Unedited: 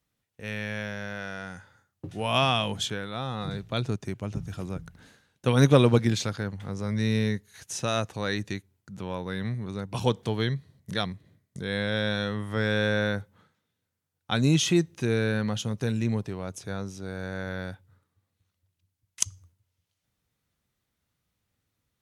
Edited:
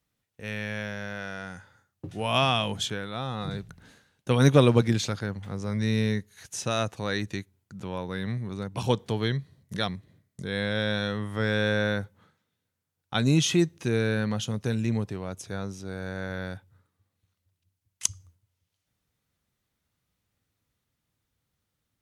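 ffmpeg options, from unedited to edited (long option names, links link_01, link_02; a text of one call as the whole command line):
ffmpeg -i in.wav -filter_complex "[0:a]asplit=2[link_01][link_02];[link_01]atrim=end=3.692[link_03];[link_02]atrim=start=4.858[link_04];[link_03][link_04]acrossfade=duration=0.004:curve1=hsin:curve2=hsin" out.wav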